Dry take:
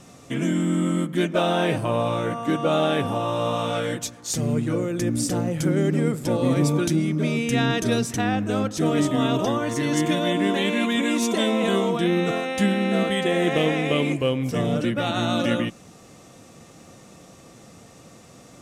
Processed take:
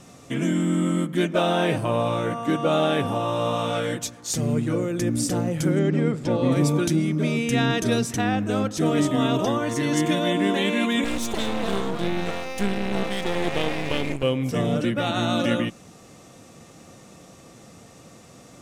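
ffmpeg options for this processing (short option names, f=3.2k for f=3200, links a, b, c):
-filter_complex "[0:a]asettb=1/sr,asplit=3[a][b][c];[a]atrim=end=5.794[d];[b]atrim=start=5.79:end=6.52,asetpts=PTS-STARTPTS,afade=t=in:d=0.004:c=qsin,afade=t=out:st=0.726:d=0.004:c=qsin,lowpass=4.9k[e];[c]atrim=start=6.516[f];[d][e]acrossfade=d=0.004:c1=hsin:c2=qsin[g];[g][f]acrossfade=d=0.004:c1=qsin:c2=hsin,asettb=1/sr,asplit=3[h][i][j];[h]atrim=end=11.044[k];[i]atrim=start=11.04:end=14.23,asetpts=PTS-STARTPTS,afade=t=in:d=0.004:c=qsin,afade=t=out:st=3.186:d=0.004:c=qsin,aeval=exprs='max(val(0),0)':c=same[l];[j]atrim=start=14.226[m];[k][l]acrossfade=d=0.004:c1=hsin:c2=qsin[n];[n][m]acrossfade=d=0.004:c1=qsin:c2=hsin"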